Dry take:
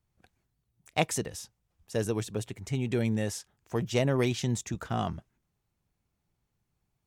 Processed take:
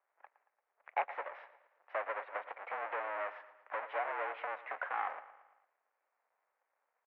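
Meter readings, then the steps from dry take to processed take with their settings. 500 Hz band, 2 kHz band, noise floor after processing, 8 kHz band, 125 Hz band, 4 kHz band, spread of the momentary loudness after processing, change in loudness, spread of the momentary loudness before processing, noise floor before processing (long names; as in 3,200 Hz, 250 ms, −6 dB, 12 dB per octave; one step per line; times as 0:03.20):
−10.0 dB, −1.0 dB, −85 dBFS, below −40 dB, below −40 dB, −20.5 dB, 11 LU, −8.5 dB, 11 LU, −81 dBFS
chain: each half-wave held at its own peak
downward compressor 4 to 1, threshold −32 dBFS, peak gain reduction 13 dB
repeating echo 114 ms, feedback 51%, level −15.5 dB
single-sideband voice off tune +86 Hz 550–2,100 Hz
level +3 dB
AAC 64 kbit/s 32,000 Hz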